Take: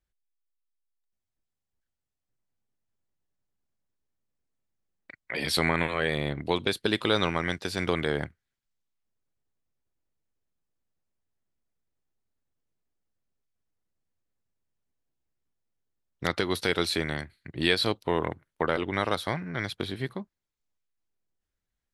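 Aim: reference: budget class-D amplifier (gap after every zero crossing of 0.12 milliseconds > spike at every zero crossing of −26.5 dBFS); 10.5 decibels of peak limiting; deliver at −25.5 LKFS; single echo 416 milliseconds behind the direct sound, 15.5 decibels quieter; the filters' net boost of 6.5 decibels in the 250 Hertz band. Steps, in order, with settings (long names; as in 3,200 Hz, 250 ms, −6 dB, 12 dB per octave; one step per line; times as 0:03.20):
parametric band 250 Hz +9 dB
brickwall limiter −18 dBFS
single-tap delay 416 ms −15.5 dB
gap after every zero crossing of 0.12 ms
spike at every zero crossing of −26.5 dBFS
level +6 dB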